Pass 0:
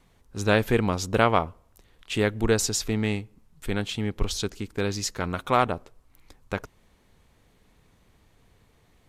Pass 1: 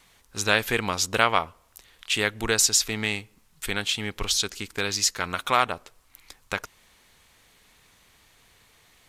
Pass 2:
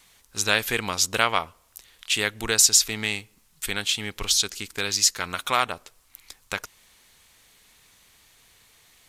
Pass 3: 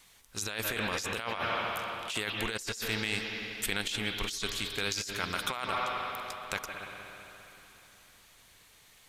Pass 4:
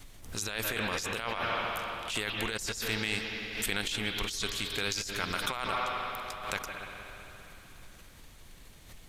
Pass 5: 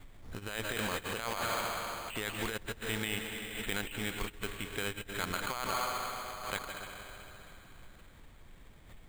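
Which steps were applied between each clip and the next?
tilt shelf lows -8.5 dB, about 840 Hz; in parallel at -1 dB: compressor, threshold -30 dBFS, peak gain reduction 16.5 dB; on the sum: gain -2.5 dB
high shelf 3000 Hz +7.5 dB; gain -2.5 dB
reverb RT60 3.4 s, pre-delay 0.157 s, DRR 5 dB; negative-ratio compressor -28 dBFS, ratio -1; gain -6 dB
added noise brown -52 dBFS; backwards sustainer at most 82 dB/s
careless resampling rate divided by 8×, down filtered, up hold; gain -1.5 dB

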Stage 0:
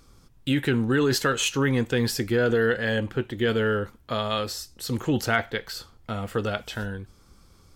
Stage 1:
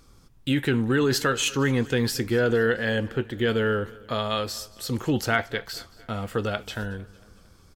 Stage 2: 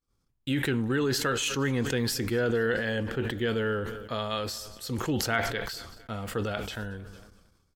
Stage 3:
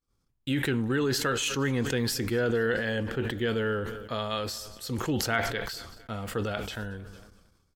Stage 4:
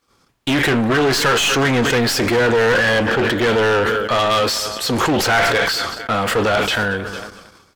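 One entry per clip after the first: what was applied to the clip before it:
feedback echo 0.227 s, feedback 54%, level -22 dB
expander -41 dBFS; sustainer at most 45 dB/s; gain -5 dB
nothing audible
one-sided clip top -31.5 dBFS; overdrive pedal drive 26 dB, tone 3100 Hz, clips at -14 dBFS; gain +7 dB

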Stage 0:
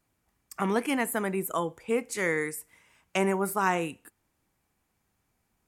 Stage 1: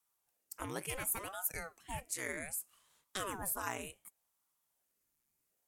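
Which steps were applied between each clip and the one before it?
pre-emphasis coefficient 0.8; ring modulator with a swept carrier 590 Hz, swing 90%, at 0.67 Hz; gain +1 dB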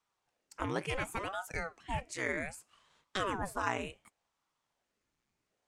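air absorption 130 m; gain +7 dB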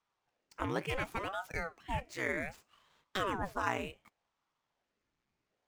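median filter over 5 samples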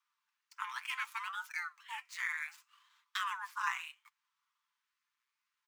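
steep high-pass 960 Hz 72 dB/oct; comb 6.8 ms, depth 40%

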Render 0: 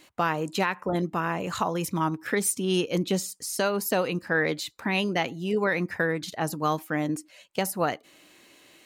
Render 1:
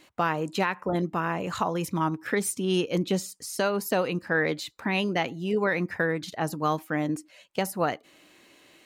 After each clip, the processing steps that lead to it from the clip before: high shelf 4700 Hz -5 dB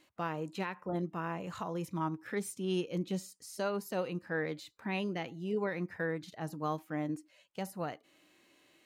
harmonic-percussive split percussive -7 dB; gain -7.5 dB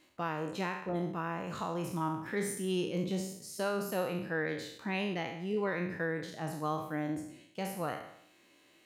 spectral trails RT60 0.72 s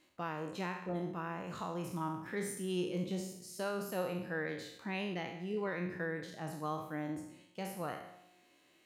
resonator 180 Hz, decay 1.3 s, mix 60%; gain +3.5 dB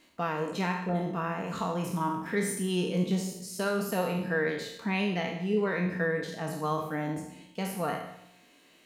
reverb RT60 0.60 s, pre-delay 4 ms, DRR 5.5 dB; gain +7.5 dB

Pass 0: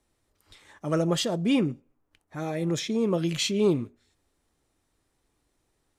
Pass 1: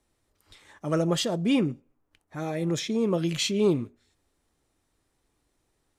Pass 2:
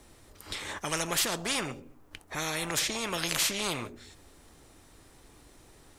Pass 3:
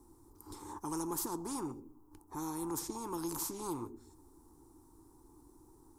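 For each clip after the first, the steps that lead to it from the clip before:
nothing audible
spectral compressor 4:1
EQ curve 110 Hz 0 dB, 200 Hz -3 dB, 330 Hz +10 dB, 620 Hz -17 dB, 910 Hz +7 dB, 1900 Hz -23 dB, 3000 Hz -25 dB, 5200 Hz -9 dB, 13000 Hz +2 dB; gain -6 dB

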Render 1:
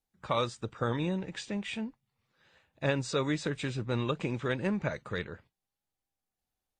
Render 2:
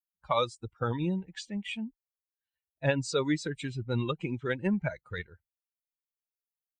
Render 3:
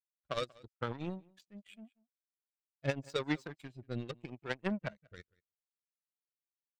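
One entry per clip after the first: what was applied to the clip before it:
per-bin expansion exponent 2; gain +5 dB
power-law curve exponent 2; outdoor echo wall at 32 m, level -25 dB; rotary speaker horn 0.8 Hz; gain +2.5 dB

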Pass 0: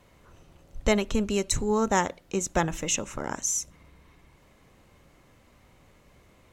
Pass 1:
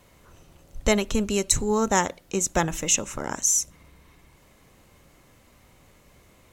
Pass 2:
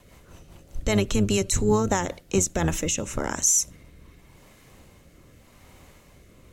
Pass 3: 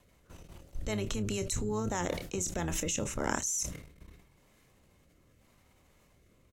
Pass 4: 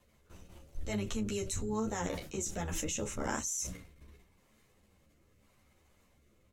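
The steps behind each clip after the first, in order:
high shelf 5900 Hz +8.5 dB; gain +1.5 dB
octaver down 1 oct, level -4 dB; limiter -15.5 dBFS, peak gain reduction 11 dB; rotary speaker horn 5 Hz, later 0.85 Hz, at 2.11; gain +5 dB
level quantiser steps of 16 dB; doubler 28 ms -13.5 dB; sustainer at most 77 dB/s; gain -1 dB
ensemble effect

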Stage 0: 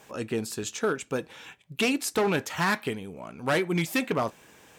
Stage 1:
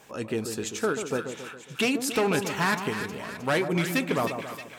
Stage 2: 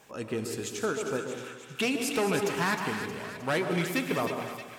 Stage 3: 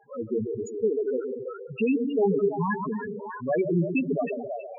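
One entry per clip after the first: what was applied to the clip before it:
split-band echo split 1200 Hz, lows 0.137 s, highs 0.312 s, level -7.5 dB
reverb, pre-delay 3 ms, DRR 7 dB; gain -3.5 dB
delay with a stepping band-pass 0.328 s, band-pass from 680 Hz, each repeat 0.7 oct, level -6.5 dB; loudest bins only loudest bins 4; gain +7.5 dB

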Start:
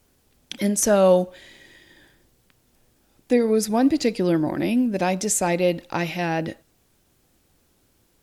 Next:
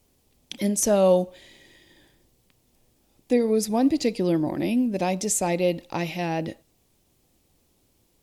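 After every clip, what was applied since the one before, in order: bell 1500 Hz -8.5 dB 0.6 oct; gain -2 dB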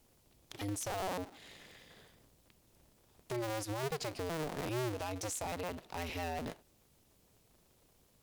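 cycle switcher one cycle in 2, inverted; compressor 2:1, threshold -35 dBFS, peak gain reduction 11.5 dB; limiter -27.5 dBFS, peak gain reduction 9.5 dB; gain -3 dB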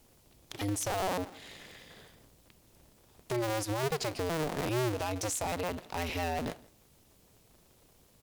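echo 0.164 s -23.5 dB; gain +5.5 dB

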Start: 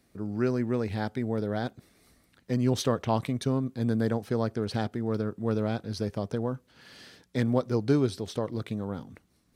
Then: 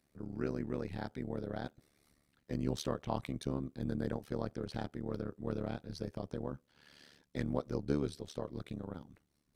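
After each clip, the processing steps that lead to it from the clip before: AM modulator 73 Hz, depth 90%; gain -6 dB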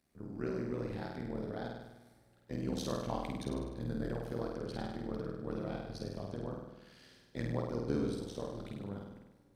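flutter echo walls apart 8.6 m, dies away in 0.98 s; on a send at -22.5 dB: reverb RT60 4.2 s, pre-delay 0.1 s; on the sum: gain -2.5 dB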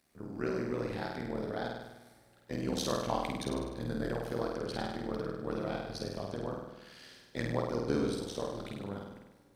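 low shelf 380 Hz -8 dB; gain +7.5 dB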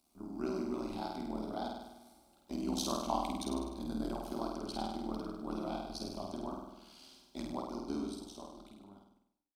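ending faded out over 2.81 s; fixed phaser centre 480 Hz, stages 6; gain +1 dB

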